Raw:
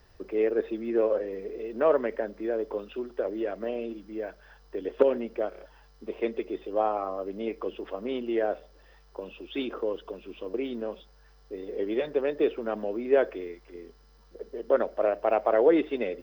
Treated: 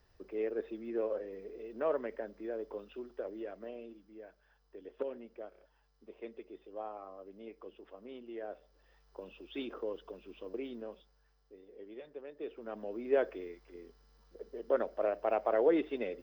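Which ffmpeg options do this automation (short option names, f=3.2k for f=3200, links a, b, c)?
-af "volume=11dB,afade=t=out:st=3.1:d=1.05:silence=0.473151,afade=t=in:st=8.38:d=0.82:silence=0.398107,afade=t=out:st=10.49:d=1.18:silence=0.266073,afade=t=in:st=12.36:d=0.79:silence=0.223872"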